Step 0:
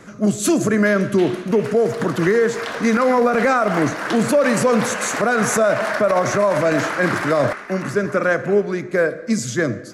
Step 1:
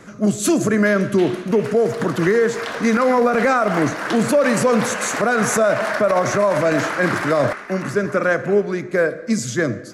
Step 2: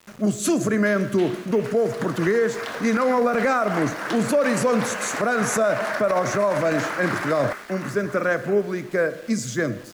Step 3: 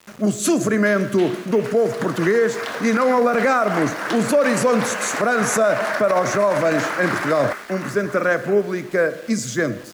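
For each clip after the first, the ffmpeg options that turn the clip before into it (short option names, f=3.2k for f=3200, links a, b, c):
-af anull
-af "aeval=exprs='val(0)*gte(abs(val(0)),0.0141)':c=same,volume=-4dB"
-af "lowshelf=f=100:g=-8,volume=3.5dB"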